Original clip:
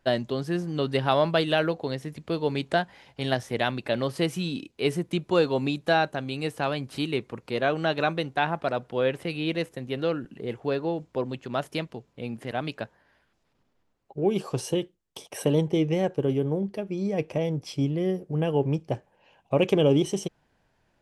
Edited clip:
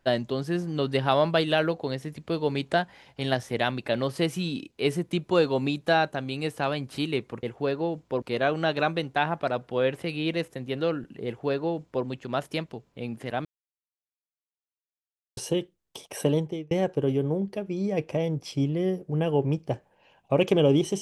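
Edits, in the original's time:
10.47–11.26 s: copy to 7.43 s
12.66–14.58 s: mute
15.48–15.92 s: fade out

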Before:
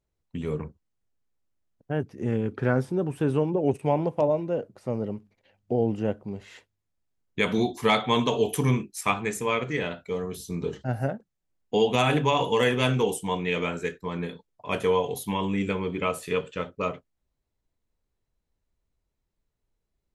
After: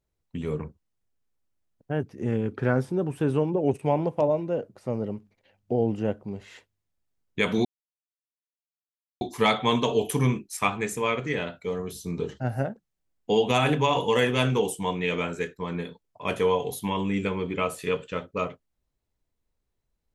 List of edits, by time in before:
7.65 s: insert silence 1.56 s

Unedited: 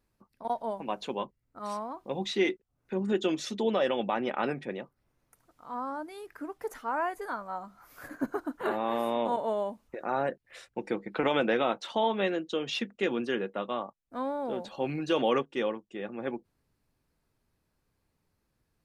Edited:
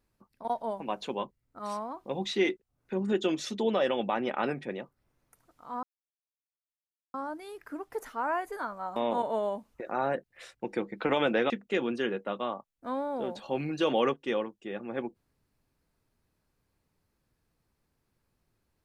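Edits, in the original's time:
5.83 s: insert silence 1.31 s
7.65–9.10 s: delete
11.64–12.79 s: delete

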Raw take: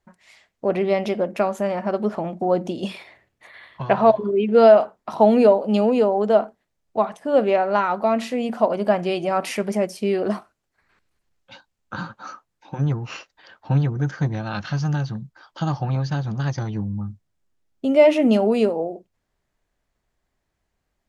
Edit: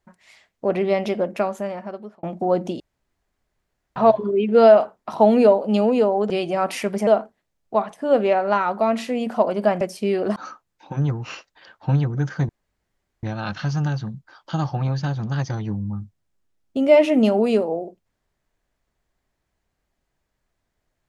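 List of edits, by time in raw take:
1.28–2.23 s: fade out
2.80–3.96 s: room tone
9.04–9.81 s: move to 6.30 s
10.36–12.18 s: delete
14.31 s: insert room tone 0.74 s

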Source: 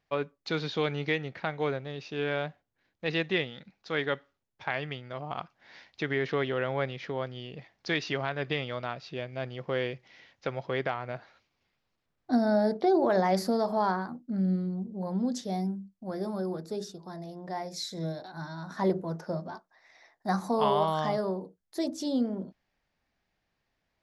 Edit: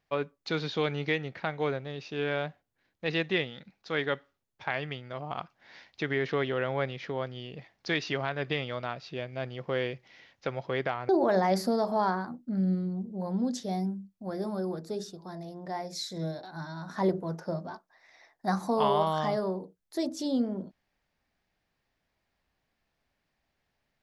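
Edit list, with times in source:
11.09–12.90 s: delete

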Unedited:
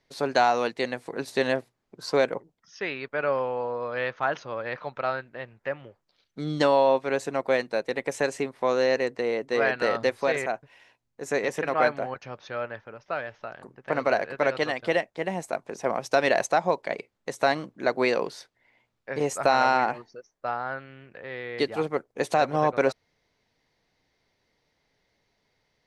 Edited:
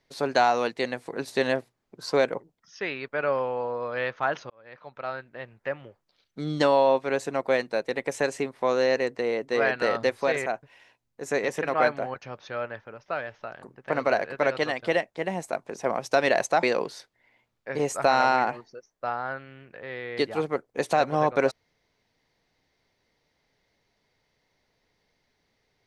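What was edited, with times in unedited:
4.50–5.57 s: fade in
16.63–18.04 s: delete

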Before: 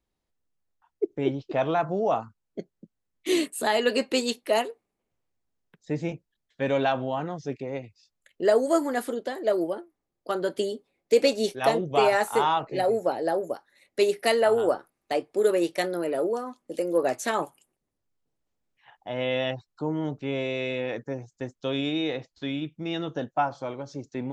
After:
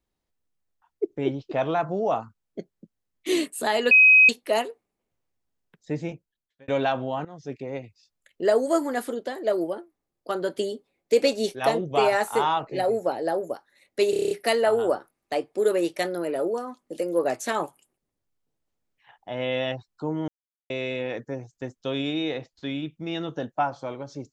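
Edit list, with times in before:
3.91–4.29 s: bleep 2.53 kHz -10.5 dBFS
5.94–6.68 s: fade out
7.25–7.76 s: fade in equal-power, from -15.5 dB
14.10 s: stutter 0.03 s, 8 plays
20.07–20.49 s: mute

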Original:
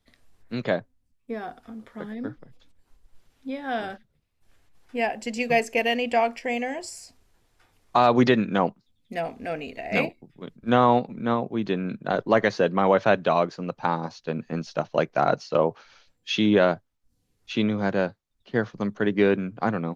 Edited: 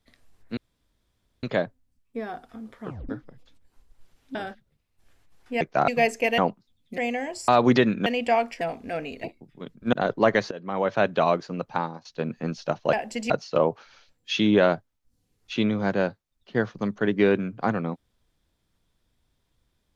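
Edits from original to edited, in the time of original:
0.57 s: insert room tone 0.86 s
1.98 s: tape stop 0.25 s
3.49–3.78 s: delete
5.04–5.41 s: swap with 15.02–15.29 s
5.91–6.46 s: swap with 8.57–9.17 s
6.96–7.99 s: delete
9.80–10.05 s: delete
10.74–12.02 s: delete
12.60–13.27 s: fade in, from -20.5 dB
13.78–14.14 s: fade out, to -17.5 dB

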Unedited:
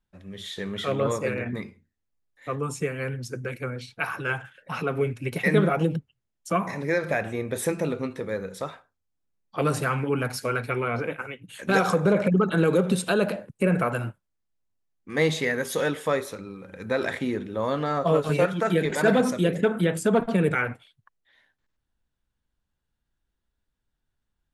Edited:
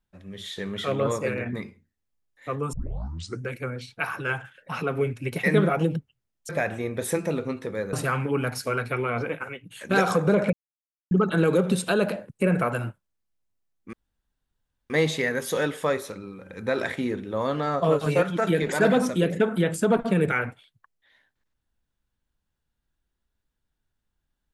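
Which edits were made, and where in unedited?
2.73 s: tape start 0.68 s
6.49–7.03 s: delete
8.47–9.71 s: delete
12.31 s: insert silence 0.58 s
15.13 s: insert room tone 0.97 s

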